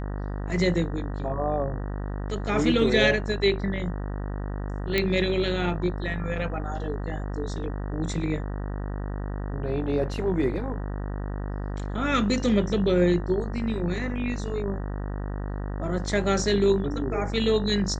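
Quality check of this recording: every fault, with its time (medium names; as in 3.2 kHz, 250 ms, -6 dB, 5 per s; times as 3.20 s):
buzz 50 Hz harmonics 38 -31 dBFS
4.98 s: pop -10 dBFS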